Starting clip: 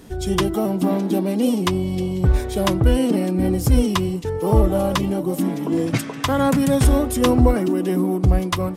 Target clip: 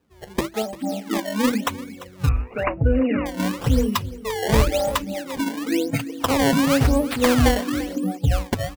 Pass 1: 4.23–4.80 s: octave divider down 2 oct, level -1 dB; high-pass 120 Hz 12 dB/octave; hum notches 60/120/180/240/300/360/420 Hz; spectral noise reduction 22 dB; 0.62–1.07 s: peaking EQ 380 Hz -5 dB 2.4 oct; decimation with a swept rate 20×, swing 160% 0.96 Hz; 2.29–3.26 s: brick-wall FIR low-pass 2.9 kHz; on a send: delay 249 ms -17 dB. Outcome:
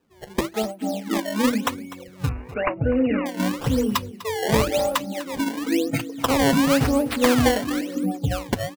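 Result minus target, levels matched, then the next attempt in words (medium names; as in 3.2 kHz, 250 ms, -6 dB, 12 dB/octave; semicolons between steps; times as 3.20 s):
echo 96 ms early; 125 Hz band -3.5 dB
4.23–4.80 s: octave divider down 2 oct, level -1 dB; high-pass 48 Hz 12 dB/octave; hum notches 60/120/180/240/300/360/420 Hz; spectral noise reduction 22 dB; 0.62–1.07 s: peaking EQ 380 Hz -5 dB 2.4 oct; decimation with a swept rate 20×, swing 160% 0.96 Hz; 2.29–3.26 s: brick-wall FIR low-pass 2.9 kHz; on a send: delay 345 ms -17 dB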